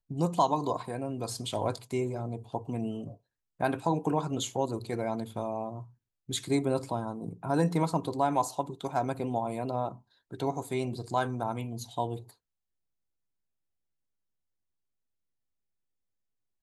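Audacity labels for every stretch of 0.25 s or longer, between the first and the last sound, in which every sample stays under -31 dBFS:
3.070000	3.610000	silence
5.780000	6.300000	silence
9.890000	10.340000	silence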